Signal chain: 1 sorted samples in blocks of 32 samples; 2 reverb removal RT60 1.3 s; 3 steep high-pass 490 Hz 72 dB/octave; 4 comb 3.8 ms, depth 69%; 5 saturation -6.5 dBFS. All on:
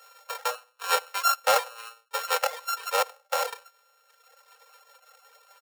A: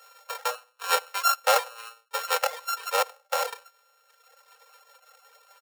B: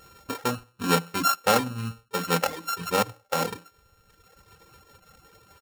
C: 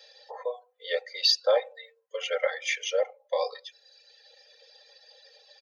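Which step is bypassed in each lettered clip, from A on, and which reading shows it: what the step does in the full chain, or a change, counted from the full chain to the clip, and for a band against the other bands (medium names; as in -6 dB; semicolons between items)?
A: 5, distortion -26 dB; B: 3, 500 Hz band +2.5 dB; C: 1, crest factor change -3.0 dB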